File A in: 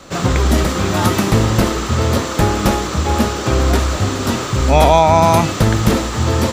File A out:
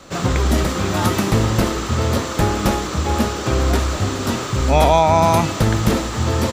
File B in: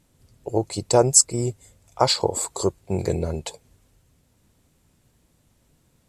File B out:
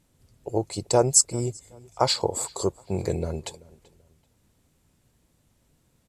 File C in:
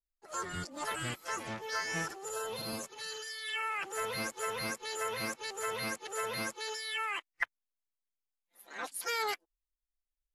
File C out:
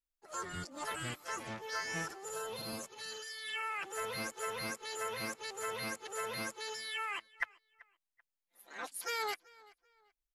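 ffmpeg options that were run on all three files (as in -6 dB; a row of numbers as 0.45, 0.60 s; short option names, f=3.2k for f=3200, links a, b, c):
-filter_complex "[0:a]asplit=2[a][b];[b]adelay=385,lowpass=f=4.5k:p=1,volume=-22.5dB,asplit=2[c][d];[d]adelay=385,lowpass=f=4.5k:p=1,volume=0.31[e];[a][c][e]amix=inputs=3:normalize=0,volume=-3dB"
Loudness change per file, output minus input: -3.0, -3.0, -3.0 LU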